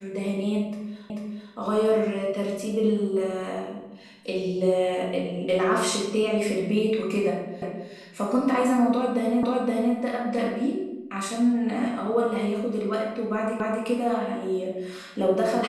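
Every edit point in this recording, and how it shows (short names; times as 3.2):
1.1 repeat of the last 0.44 s
7.62 repeat of the last 0.27 s
9.43 repeat of the last 0.52 s
13.6 repeat of the last 0.26 s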